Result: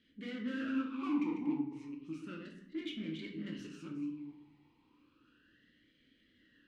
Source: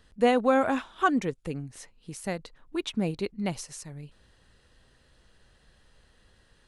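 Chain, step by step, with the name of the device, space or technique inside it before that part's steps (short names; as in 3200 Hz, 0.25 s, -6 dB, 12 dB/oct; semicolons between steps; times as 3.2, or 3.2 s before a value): reverse delay 0.216 s, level -10 dB; LPF 7900 Hz; talk box (tube stage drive 38 dB, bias 0.65; vowel sweep i-u 0.33 Hz); shoebox room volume 110 m³, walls mixed, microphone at 0.81 m; gain +9 dB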